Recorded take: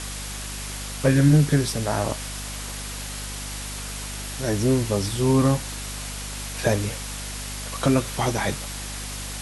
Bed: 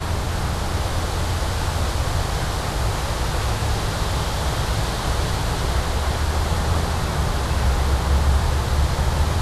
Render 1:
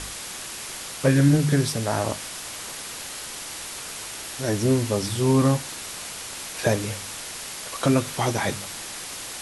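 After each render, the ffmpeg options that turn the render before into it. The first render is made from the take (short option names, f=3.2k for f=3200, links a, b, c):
-af "bandreject=f=50:t=h:w=4,bandreject=f=100:t=h:w=4,bandreject=f=150:t=h:w=4,bandreject=f=200:t=h:w=4,bandreject=f=250:t=h:w=4"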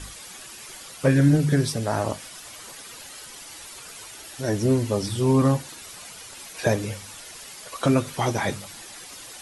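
-af "afftdn=nr=10:nf=-36"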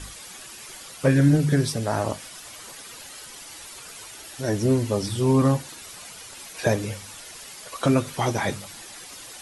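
-af anull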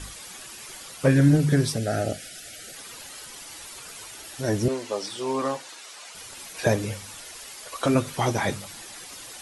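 -filter_complex "[0:a]asettb=1/sr,asplit=3[a][b][c];[a]atrim=end=1.774[d];[b]atrim=start=1.77:end=2.75,asetpts=PTS-STARTPTS,afade=t=in:d=0.004:c=qsin,afade=t=out:st=0.976:d=0.004:c=qsin,asuperstop=centerf=1000:order=8:qfactor=1.9[e];[c]atrim=start=2.746[f];[d][e]acrossfade=d=0.004:c1=hsin:c2=qsin[g];[g][f]acrossfade=d=0.004:c1=qsin:c2=hsin,asettb=1/sr,asplit=3[h][i][j];[h]atrim=end=4.684[k];[i]atrim=start=4.68:end=6.15,asetpts=PTS-STARTPTS,afade=t=in:d=0.004:c=qsin,afade=t=out:st=1.466:d=0.004:c=qsin,highpass=490,lowpass=7.8k[l];[j]atrim=start=6.146[m];[k][l]acrossfade=d=0.004:c1=hsin:c2=qsin[n];[n][m]acrossfade=d=0.004:c1=qsin:c2=hsin,asettb=1/sr,asplit=3[o][p][q];[o]atrim=end=7.274[r];[p]atrim=start=7.27:end=7.95,asetpts=PTS-STARTPTS,afade=t=in:d=0.004:c=qsin,afade=t=out:st=0.676:d=0.004:c=qsin,equalizer=f=160:w=1.5:g=-8[s];[q]atrim=start=7.946[t];[r][s]acrossfade=d=0.004:c1=hsin:c2=qsin[u];[u][t]acrossfade=d=0.004:c1=qsin:c2=hsin"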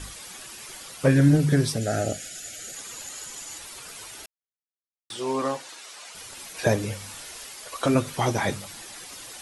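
-filter_complex "[0:a]asettb=1/sr,asplit=3[a][b][c];[a]atrim=end=1.814[d];[b]atrim=start=1.81:end=3.58,asetpts=PTS-STARTPTS,afade=t=in:d=0.004:c=qsin,afade=t=out:st=1.766:d=0.004:c=qsin,equalizer=f=6.9k:w=7.8:g=13[e];[c]atrim=start=3.576[f];[d][e]acrossfade=d=0.004:c1=hsin:c2=qsin[g];[g][f]acrossfade=d=0.004:c1=qsin:c2=hsin,asettb=1/sr,asplit=3[h][i][j];[h]atrim=end=6.974[k];[i]atrim=start=6.97:end=7.47,asetpts=PTS-STARTPTS,afade=t=in:d=0.004:c=qsin,afade=t=out:st=0.496:d=0.004:c=qsin,asplit=2[l][m];[m]adelay=31,volume=-6dB[n];[l][n]amix=inputs=2:normalize=0,atrim=end_sample=22050[o];[j]atrim=start=7.466[p];[k][o]acrossfade=d=0.004:c1=hsin:c2=qsin[q];[q][p]acrossfade=d=0.004:c1=qsin:c2=hsin,asplit=3[r][s][t];[r]atrim=end=4.26,asetpts=PTS-STARTPTS,afade=t=out:st=4.256:d=0.004:c=hsin[u];[s]atrim=start=4.26:end=5.1,asetpts=PTS-STARTPTS,volume=0[v];[t]atrim=start=5.1,asetpts=PTS-STARTPTS,afade=t=in:d=0.004:c=hsin[w];[u][v][w]concat=n=3:v=0:a=1"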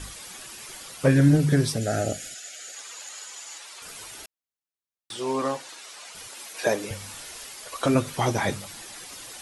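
-filter_complex "[0:a]asettb=1/sr,asplit=3[a][b][c];[a]atrim=end=2.344[d];[b]atrim=start=2.34:end=3.82,asetpts=PTS-STARTPTS,afade=t=in:d=0.004:c=qsin,afade=t=out:st=1.476:d=0.004:c=qsin,highpass=610,lowpass=7.9k[e];[c]atrim=start=3.816[f];[d][e]acrossfade=d=0.004:c1=hsin:c2=qsin[g];[g][f]acrossfade=d=0.004:c1=qsin:c2=hsin,asettb=1/sr,asplit=3[h][i][j];[h]atrim=end=6.284[k];[i]atrim=start=6.28:end=6.91,asetpts=PTS-STARTPTS,afade=t=in:d=0.004:c=qsin,afade=t=out:st=0.626:d=0.004:c=qsin,highpass=310[l];[j]atrim=start=6.906[m];[k][l]acrossfade=d=0.004:c1=hsin:c2=qsin[n];[n][m]acrossfade=d=0.004:c1=qsin:c2=hsin"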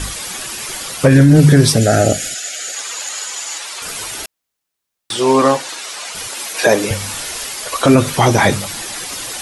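-af "alimiter=level_in=15dB:limit=-1dB:release=50:level=0:latency=1"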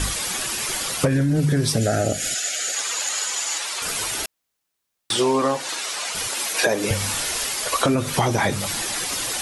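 -af "acompressor=threshold=-16dB:ratio=16"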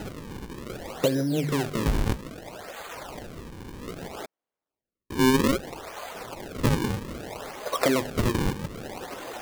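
-af "bandpass=f=530:t=q:w=0.92:csg=0,acrusher=samples=38:mix=1:aa=0.000001:lfo=1:lforange=60.8:lforate=0.62"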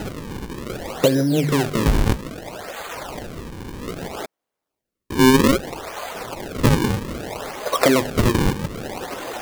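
-af "volume=7dB"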